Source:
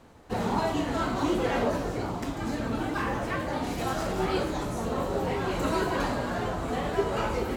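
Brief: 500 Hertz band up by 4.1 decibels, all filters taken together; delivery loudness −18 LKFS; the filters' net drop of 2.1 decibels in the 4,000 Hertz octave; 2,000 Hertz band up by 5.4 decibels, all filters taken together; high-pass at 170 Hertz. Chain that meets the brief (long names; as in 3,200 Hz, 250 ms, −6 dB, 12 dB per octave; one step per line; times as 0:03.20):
high-pass filter 170 Hz
parametric band 500 Hz +5 dB
parametric band 2,000 Hz +8 dB
parametric band 4,000 Hz −6.5 dB
level +9 dB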